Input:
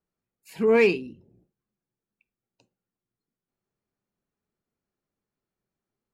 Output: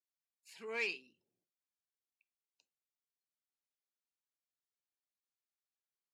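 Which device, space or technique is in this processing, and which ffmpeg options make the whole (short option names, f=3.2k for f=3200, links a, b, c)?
piezo pickup straight into a mixer: -af "lowpass=5.5k,aderivative,volume=-1dB"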